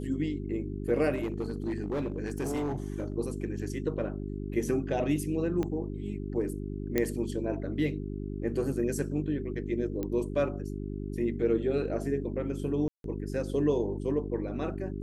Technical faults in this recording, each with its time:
hum 50 Hz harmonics 8 -36 dBFS
1.14–3.12 s: clipped -27 dBFS
5.63 s: pop -20 dBFS
6.98 s: pop -13 dBFS
10.03 s: pop -21 dBFS
12.88–13.04 s: dropout 162 ms

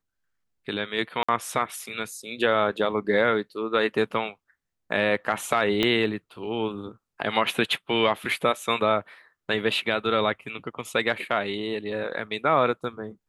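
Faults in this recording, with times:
1.23–1.28 s: dropout 55 ms
5.83 s: pop -10 dBFS

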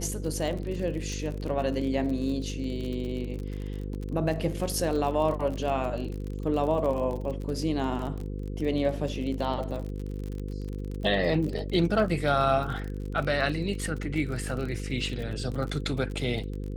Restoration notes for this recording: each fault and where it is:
buzz 50 Hz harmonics 10 -34 dBFS
crackle 37 per s -33 dBFS

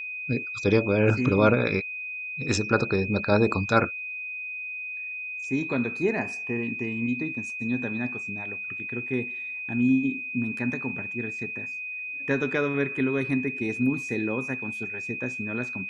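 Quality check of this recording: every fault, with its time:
whine 2.5 kHz -32 dBFS

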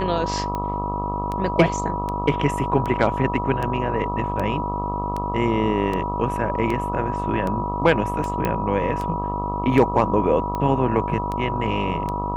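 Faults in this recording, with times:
buzz 50 Hz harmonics 26 -28 dBFS
tick 78 rpm -15 dBFS
whine 970 Hz -26 dBFS
8.45 s: pop -10 dBFS

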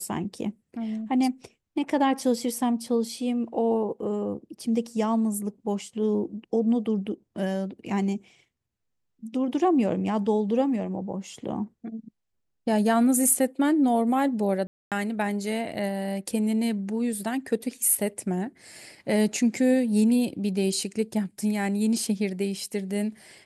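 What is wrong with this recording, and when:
14.67–14.92 s: dropout 247 ms

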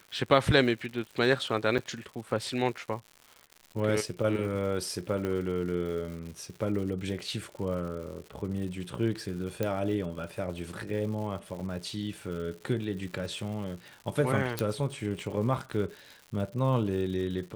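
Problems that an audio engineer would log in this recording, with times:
crackle 180 per s -39 dBFS
1.78–1.79 s: dropout 6.6 ms
5.25 s: pop -20 dBFS
9.63 s: pop -16 dBFS
11.60–11.61 s: dropout 5.7 ms
14.59 s: pop -13 dBFS

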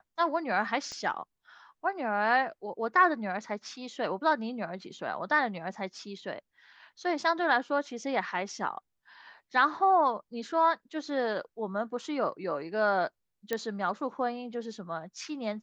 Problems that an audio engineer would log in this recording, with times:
0.92 s: pop -27 dBFS
13.53 s: pop -16 dBFS

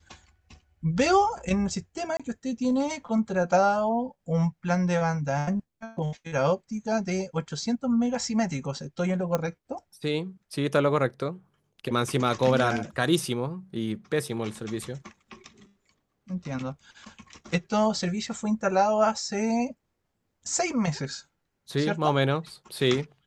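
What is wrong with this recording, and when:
2.17–2.20 s: dropout 26 ms
9.35 s: pop -12 dBFS

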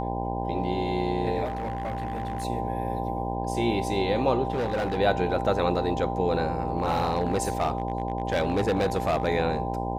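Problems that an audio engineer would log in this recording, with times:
buzz 60 Hz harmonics 17 -31 dBFS
whine 790 Hz -32 dBFS
1.44–2.45 s: clipped -26 dBFS
4.52–4.98 s: clipped -23.5 dBFS
6.78–9.27 s: clipped -19.5 dBFS

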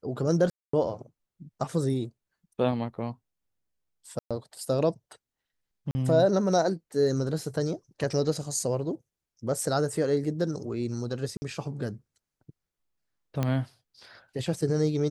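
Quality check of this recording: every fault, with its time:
0.50–0.73 s: dropout 234 ms
4.19–4.31 s: dropout 116 ms
5.91–5.95 s: dropout 40 ms
11.37–11.42 s: dropout 50 ms
13.43 s: pop -14 dBFS

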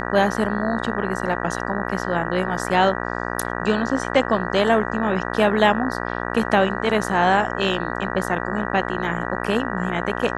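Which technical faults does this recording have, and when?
buzz 60 Hz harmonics 32 -27 dBFS

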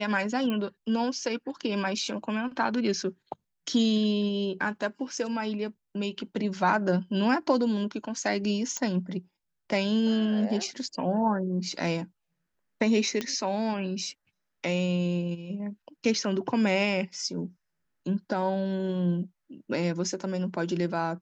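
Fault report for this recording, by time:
0.50 s: pop -19 dBFS
8.77 s: pop -17 dBFS
13.21 s: pop -16 dBFS

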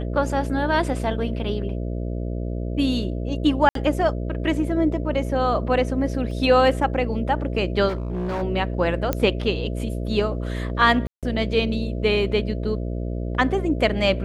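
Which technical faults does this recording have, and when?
buzz 60 Hz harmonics 11 -27 dBFS
3.69–3.75 s: dropout 63 ms
6.31 s: dropout 2.1 ms
7.88–8.43 s: clipped -23 dBFS
9.13 s: pop -8 dBFS
11.07–11.23 s: dropout 157 ms

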